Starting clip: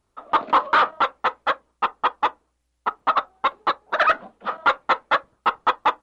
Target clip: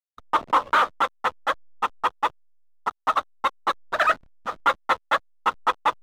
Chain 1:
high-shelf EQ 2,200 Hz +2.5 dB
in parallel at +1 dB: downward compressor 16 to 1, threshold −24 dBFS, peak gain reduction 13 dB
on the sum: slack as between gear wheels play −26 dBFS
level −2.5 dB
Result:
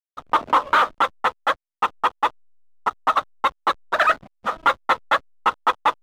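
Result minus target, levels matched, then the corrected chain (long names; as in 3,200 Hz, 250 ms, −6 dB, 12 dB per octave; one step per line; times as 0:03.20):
downward compressor: peak gain reduction +13 dB
high-shelf EQ 2,200 Hz +2.5 dB
slack as between gear wheels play −26 dBFS
level −2.5 dB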